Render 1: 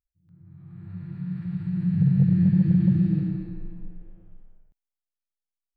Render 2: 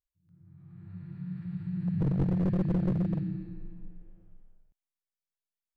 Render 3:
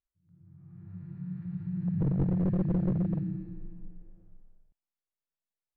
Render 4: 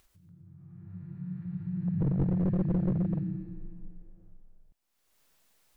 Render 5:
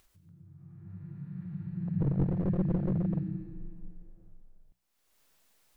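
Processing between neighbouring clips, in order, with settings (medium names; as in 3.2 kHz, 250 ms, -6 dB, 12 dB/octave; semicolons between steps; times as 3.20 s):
one-sided wavefolder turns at -17.5 dBFS; trim -6.5 dB
low-pass 1.2 kHz 6 dB/octave
upward compressor, threshold -47 dBFS
hum notches 60/120/180 Hz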